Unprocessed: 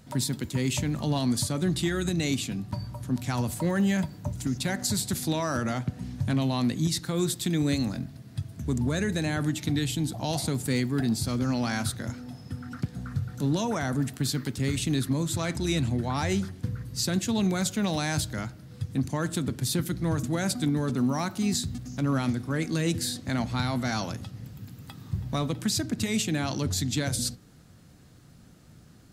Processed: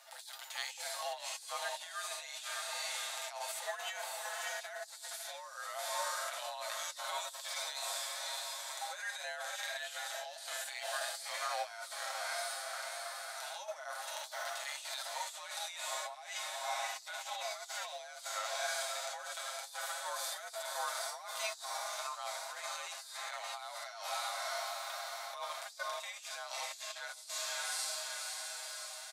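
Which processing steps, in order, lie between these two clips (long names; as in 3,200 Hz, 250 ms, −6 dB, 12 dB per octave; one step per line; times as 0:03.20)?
Butterworth high-pass 690 Hz 72 dB per octave
on a send: feedback delay with all-pass diffusion 605 ms, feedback 65%, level −9.5 dB
on the sum: compressor whose output falls as the input rises −39 dBFS, ratio −0.5
frequency shifter −77 Hz
harmonic and percussive parts rebalanced percussive −17 dB
comb filter 7.5 ms
level +2 dB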